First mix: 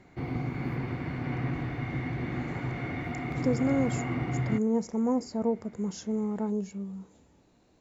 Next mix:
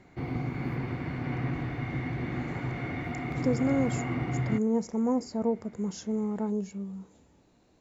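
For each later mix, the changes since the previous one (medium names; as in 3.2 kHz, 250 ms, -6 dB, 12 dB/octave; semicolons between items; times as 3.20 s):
no change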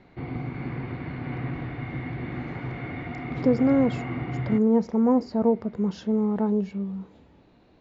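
speech +6.5 dB; master: add low-pass 4.1 kHz 24 dB/octave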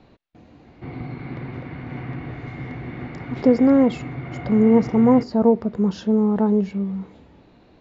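speech +5.5 dB; background: entry +0.65 s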